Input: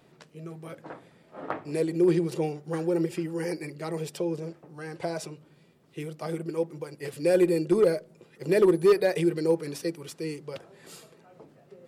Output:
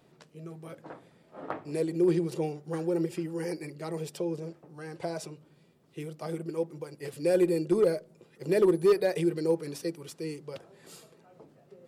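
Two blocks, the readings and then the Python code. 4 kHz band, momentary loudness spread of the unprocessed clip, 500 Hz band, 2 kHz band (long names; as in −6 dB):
−3.5 dB, 20 LU, −2.5 dB, −4.5 dB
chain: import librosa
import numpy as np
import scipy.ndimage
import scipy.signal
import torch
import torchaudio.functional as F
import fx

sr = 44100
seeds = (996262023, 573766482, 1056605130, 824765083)

y = fx.peak_eq(x, sr, hz=2000.0, db=-2.5, octaves=1.4)
y = y * librosa.db_to_amplitude(-2.5)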